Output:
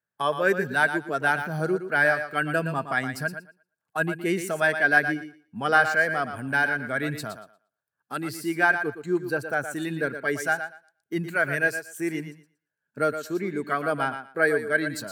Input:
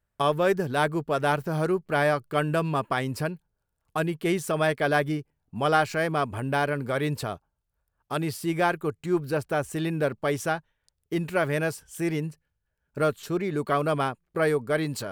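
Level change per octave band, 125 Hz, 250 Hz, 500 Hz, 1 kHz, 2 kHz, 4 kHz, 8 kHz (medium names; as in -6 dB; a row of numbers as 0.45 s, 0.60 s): -5.0 dB, -1.5 dB, -1.5 dB, 0.0 dB, +8.5 dB, -2.0 dB, 0.0 dB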